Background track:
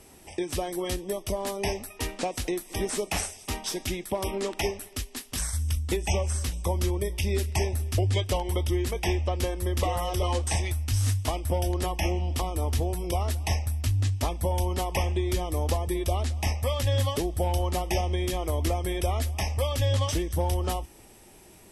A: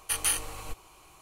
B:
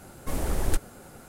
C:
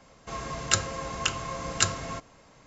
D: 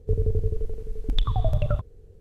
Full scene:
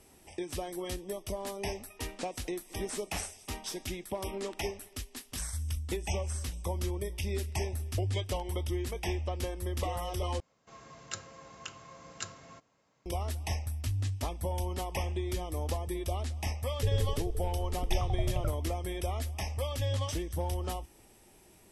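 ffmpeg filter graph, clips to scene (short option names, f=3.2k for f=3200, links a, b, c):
-filter_complex "[0:a]volume=-7dB[a];[3:a]highpass=93[b];[a]asplit=2[c][d];[c]atrim=end=10.404[e];[b]atrim=end=2.66,asetpts=PTS-STARTPTS,volume=-16dB[f];[d]atrim=start=13.056[g];[4:a]atrim=end=2.2,asetpts=PTS-STARTPTS,volume=-9dB,afade=t=in:d=0.004:c=hsin,afade=t=out:st=2.196:d=0.004:c=hsin,adelay=16740[h];[e][f]acrossfade=d=0.004:c1=hsin:c2=hsin[i];[i][g]acrossfade=d=0.004:c1=hsin:c2=hsin[j];[j][h]amix=inputs=2:normalize=0"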